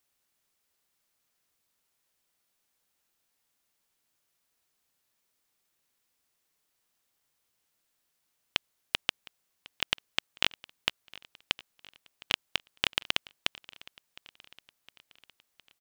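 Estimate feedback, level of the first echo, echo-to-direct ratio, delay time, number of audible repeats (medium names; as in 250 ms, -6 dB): 57%, -21.5 dB, -20.0 dB, 711 ms, 3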